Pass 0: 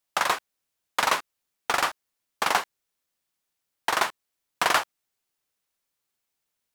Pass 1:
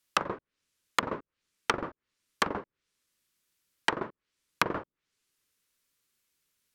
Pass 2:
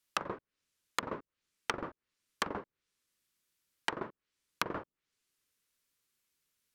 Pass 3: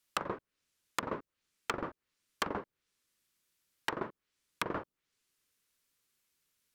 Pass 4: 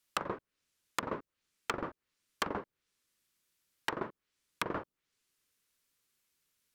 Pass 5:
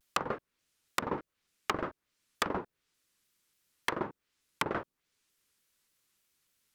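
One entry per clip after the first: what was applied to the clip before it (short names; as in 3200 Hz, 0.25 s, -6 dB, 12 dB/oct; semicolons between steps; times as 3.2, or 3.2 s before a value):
bell 750 Hz -12.5 dB 0.66 oct; treble ducked by the level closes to 470 Hz, closed at -25.5 dBFS; gain +5 dB
compressor 3:1, threshold -26 dBFS, peak gain reduction 6 dB; gain -3.5 dB
hard clip -24 dBFS, distortion -10 dB; gain +2 dB
nothing audible
shaped vibrato saw down 3.4 Hz, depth 250 cents; gain +3 dB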